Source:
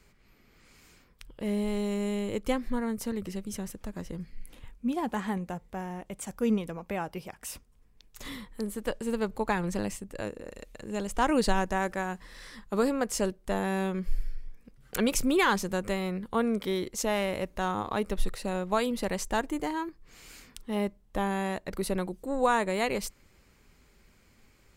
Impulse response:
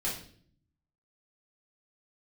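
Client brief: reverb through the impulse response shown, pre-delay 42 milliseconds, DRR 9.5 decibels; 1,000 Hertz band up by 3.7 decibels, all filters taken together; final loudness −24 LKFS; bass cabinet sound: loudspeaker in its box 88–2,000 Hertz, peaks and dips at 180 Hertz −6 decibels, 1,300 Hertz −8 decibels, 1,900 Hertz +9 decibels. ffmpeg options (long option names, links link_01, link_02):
-filter_complex "[0:a]equalizer=frequency=1000:width_type=o:gain=6,asplit=2[link_01][link_02];[1:a]atrim=start_sample=2205,adelay=42[link_03];[link_02][link_03]afir=irnorm=-1:irlink=0,volume=-14.5dB[link_04];[link_01][link_04]amix=inputs=2:normalize=0,highpass=frequency=88:width=0.5412,highpass=frequency=88:width=1.3066,equalizer=frequency=180:width_type=q:width=4:gain=-6,equalizer=frequency=1300:width_type=q:width=4:gain=-8,equalizer=frequency=1900:width_type=q:width=4:gain=9,lowpass=frequency=2000:width=0.5412,lowpass=frequency=2000:width=1.3066,volume=5.5dB"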